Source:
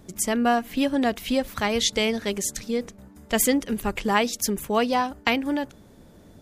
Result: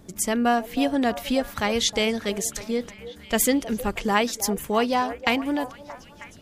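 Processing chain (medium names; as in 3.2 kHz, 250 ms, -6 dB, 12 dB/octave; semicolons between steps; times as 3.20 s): repeats whose band climbs or falls 315 ms, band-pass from 610 Hz, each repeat 0.7 oct, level -10.5 dB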